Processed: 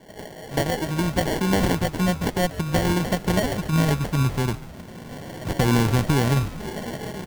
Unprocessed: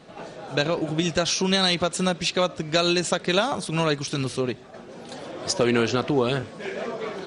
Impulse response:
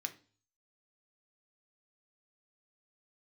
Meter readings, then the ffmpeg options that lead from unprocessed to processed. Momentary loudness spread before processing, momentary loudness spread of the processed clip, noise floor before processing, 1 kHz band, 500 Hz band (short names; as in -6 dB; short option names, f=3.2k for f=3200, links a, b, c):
16 LU, 14 LU, -44 dBFS, +1.0 dB, -2.5 dB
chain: -filter_complex "[0:a]asubboost=boost=6:cutoff=160,acrusher=samples=35:mix=1:aa=0.000001,asplit=6[a][b][c][d][e][f];[b]adelay=142,afreqshift=-100,volume=-16.5dB[g];[c]adelay=284,afreqshift=-200,volume=-21.9dB[h];[d]adelay=426,afreqshift=-300,volume=-27.2dB[i];[e]adelay=568,afreqshift=-400,volume=-32.6dB[j];[f]adelay=710,afreqshift=-500,volume=-37.9dB[k];[a][g][h][i][j][k]amix=inputs=6:normalize=0"